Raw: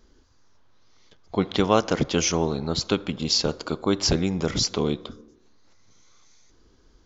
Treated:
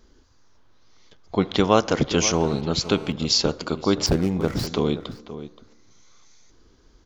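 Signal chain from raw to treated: 4.06–4.67 median filter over 15 samples; outdoor echo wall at 90 m, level -13 dB; 2.33–3.12 GSM buzz -44 dBFS; gain +2 dB

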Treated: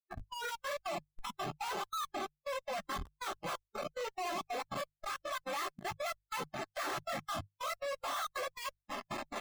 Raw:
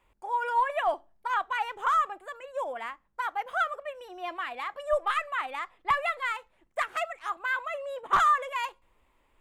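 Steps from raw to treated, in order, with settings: per-bin compression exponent 0.6; compressor 3:1, threshold -41 dBFS, peak gain reduction 18 dB; soft clip -26 dBFS, distortion -28 dB; step gate ".x.xx.x.x..x" 140 bpm -24 dB; bell 270 Hz -3 dB 1.8 oct; flange 0.46 Hz, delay 9.8 ms, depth 8 ms, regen -12%; 3.2–5.38 low shelf 87 Hz +10.5 dB; Schmitt trigger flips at -55 dBFS; notches 50/100/150 Hz; spectral noise reduction 19 dB; gain +12 dB

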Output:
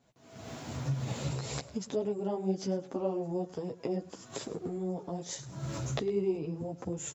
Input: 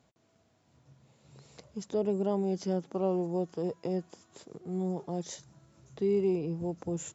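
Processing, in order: recorder AGC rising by 61 dB/s; chorus voices 4, 0.95 Hz, delay 12 ms, depth 4.8 ms; on a send: echo 0.105 s -19 dB

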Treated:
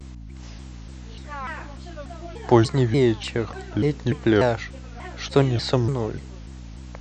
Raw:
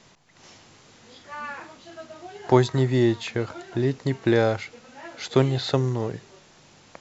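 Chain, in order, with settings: hum 60 Hz, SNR 14 dB; shaped vibrato saw down 3.4 Hz, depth 250 cents; gain +1.5 dB

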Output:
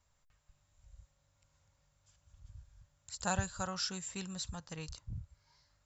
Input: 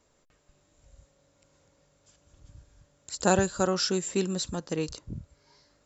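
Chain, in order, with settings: EQ curve 100 Hz 0 dB, 360 Hz -23 dB, 860 Hz -7 dB; gain -1 dB

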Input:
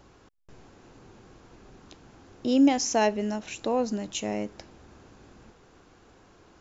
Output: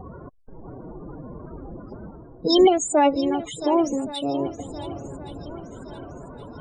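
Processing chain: reverse; upward compressor, threshold -32 dBFS; reverse; loudest bins only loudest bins 32; formant-preserving pitch shift +5 st; swung echo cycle 1.119 s, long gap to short 1.5:1, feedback 40%, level -14.5 dB; gain +6 dB

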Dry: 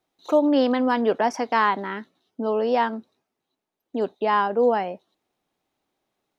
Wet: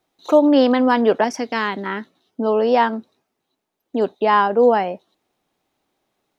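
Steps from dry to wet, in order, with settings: 1.24–1.86 bell 940 Hz -11.5 dB 1.4 oct; gain +5.5 dB

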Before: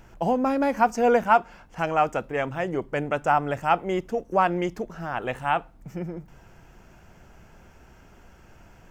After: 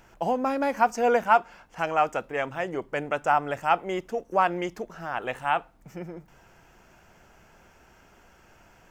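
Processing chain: low shelf 290 Hz -9.5 dB

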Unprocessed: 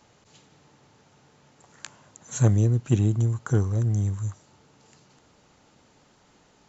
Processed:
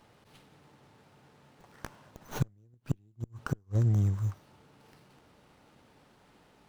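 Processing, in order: flipped gate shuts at -14 dBFS, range -39 dB; running maximum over 5 samples; gain -1.5 dB

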